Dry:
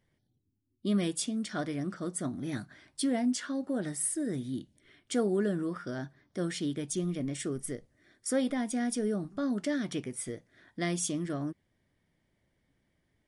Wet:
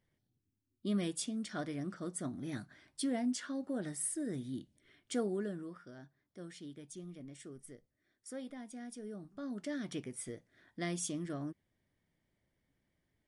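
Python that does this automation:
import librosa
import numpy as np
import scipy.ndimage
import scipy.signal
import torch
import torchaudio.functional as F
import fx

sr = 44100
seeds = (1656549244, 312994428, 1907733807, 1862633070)

y = fx.gain(x, sr, db=fx.line((5.17, -5.5), (5.91, -15.5), (8.99, -15.5), (9.94, -6.0)))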